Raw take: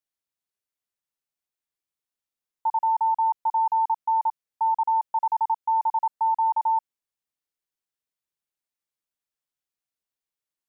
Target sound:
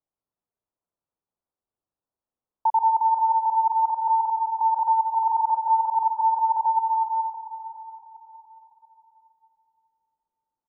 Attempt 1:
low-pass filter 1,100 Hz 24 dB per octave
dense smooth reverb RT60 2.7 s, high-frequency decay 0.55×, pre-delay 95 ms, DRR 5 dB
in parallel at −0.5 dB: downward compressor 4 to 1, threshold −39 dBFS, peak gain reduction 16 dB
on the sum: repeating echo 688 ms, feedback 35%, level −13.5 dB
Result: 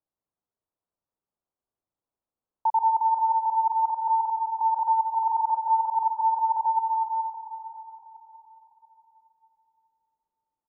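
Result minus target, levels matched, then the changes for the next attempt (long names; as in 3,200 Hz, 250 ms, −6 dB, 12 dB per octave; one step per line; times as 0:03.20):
downward compressor: peak gain reduction +8.5 dB
change: downward compressor 4 to 1, threshold −27.5 dBFS, peak gain reduction 7.5 dB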